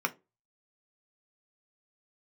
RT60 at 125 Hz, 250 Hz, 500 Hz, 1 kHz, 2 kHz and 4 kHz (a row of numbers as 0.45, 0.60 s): 0.30, 0.30, 0.30, 0.20, 0.20, 0.15 s